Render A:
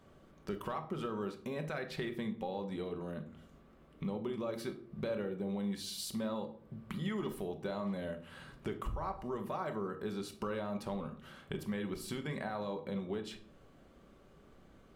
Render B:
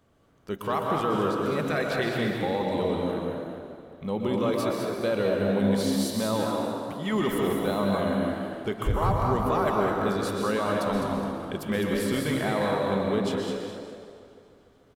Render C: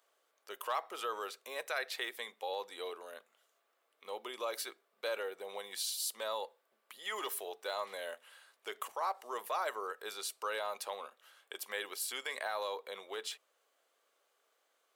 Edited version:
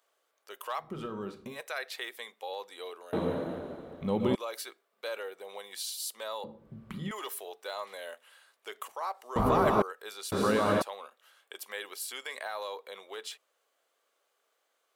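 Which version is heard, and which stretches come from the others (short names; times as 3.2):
C
0.86–1.53 from A, crossfade 0.16 s
3.13–4.35 from B
6.44–7.11 from A
9.36–9.82 from B
10.32–10.82 from B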